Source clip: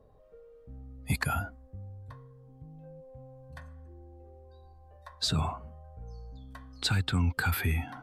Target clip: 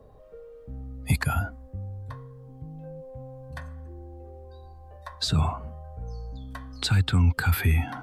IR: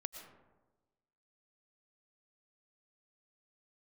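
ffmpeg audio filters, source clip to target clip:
-filter_complex "[0:a]acrossover=split=150[a][b];[b]acompressor=threshold=-37dB:ratio=2.5[c];[a][c]amix=inputs=2:normalize=0,volume=8dB"

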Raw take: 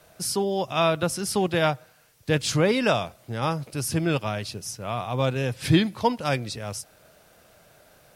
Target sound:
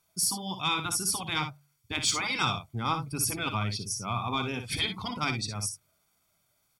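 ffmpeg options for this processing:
-filter_complex "[0:a]afftdn=nr=16:nf=-40,afftfilt=real='re*lt(hypot(re,im),0.398)':imag='im*lt(hypot(re,im),0.398)':win_size=1024:overlap=0.75,highshelf=f=2.9k:g=11.5,aecho=1:1:0.9:0.68,bandreject=f=47.85:t=h:w=4,bandreject=f=95.7:t=h:w=4,bandreject=f=143.55:t=h:w=4,acrossover=split=2300[a][b];[a]dynaudnorm=f=770:g=5:m=4dB[c];[c][b]amix=inputs=2:normalize=0,atempo=1.2,asoftclip=type=tanh:threshold=-6.5dB,aecho=1:1:58|68:0.376|0.141,volume=-8dB"

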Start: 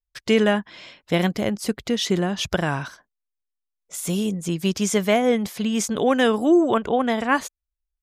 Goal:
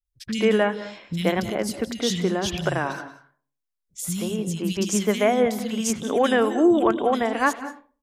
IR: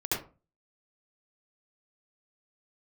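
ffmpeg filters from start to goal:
-filter_complex "[0:a]acrossover=split=210|2800[a][b][c];[c]adelay=50[d];[b]adelay=130[e];[a][e][d]amix=inputs=3:normalize=0,asplit=2[f][g];[1:a]atrim=start_sample=2205,asetrate=36162,aresample=44100,adelay=96[h];[g][h]afir=irnorm=-1:irlink=0,volume=-22.5dB[i];[f][i]amix=inputs=2:normalize=0"

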